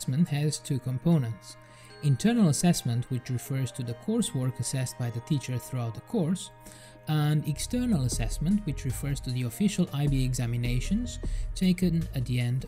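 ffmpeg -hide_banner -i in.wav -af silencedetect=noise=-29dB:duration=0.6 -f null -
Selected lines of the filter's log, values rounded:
silence_start: 1.32
silence_end: 2.03 | silence_duration: 0.71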